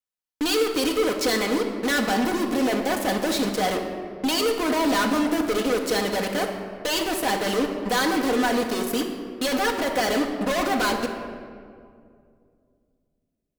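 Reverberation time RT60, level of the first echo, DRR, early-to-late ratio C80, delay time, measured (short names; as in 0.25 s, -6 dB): 2.3 s, none, 1.5 dB, 7.5 dB, none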